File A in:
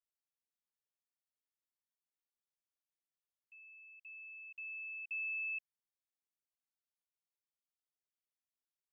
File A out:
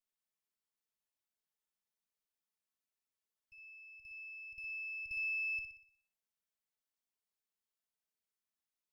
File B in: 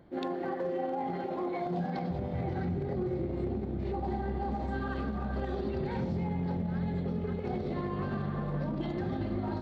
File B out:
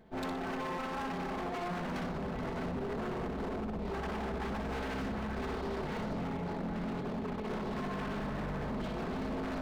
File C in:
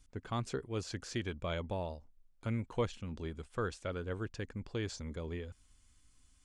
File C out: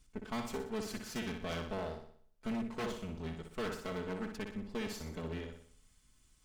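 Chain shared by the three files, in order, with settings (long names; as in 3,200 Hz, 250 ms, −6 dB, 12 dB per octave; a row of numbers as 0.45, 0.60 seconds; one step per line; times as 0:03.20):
lower of the sound and its delayed copy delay 4.6 ms
flutter between parallel walls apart 10.4 metres, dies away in 0.56 s
wave folding −31.5 dBFS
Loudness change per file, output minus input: +2.0, −3.0, −1.0 LU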